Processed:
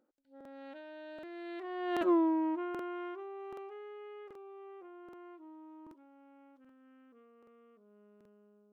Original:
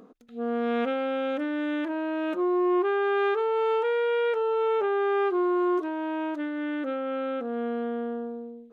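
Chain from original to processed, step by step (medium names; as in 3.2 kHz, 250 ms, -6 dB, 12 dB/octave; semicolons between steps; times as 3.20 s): Doppler pass-by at 2.08 s, 47 m/s, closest 5.8 m; crackling interface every 0.78 s, samples 2048, repeat, from 0.36 s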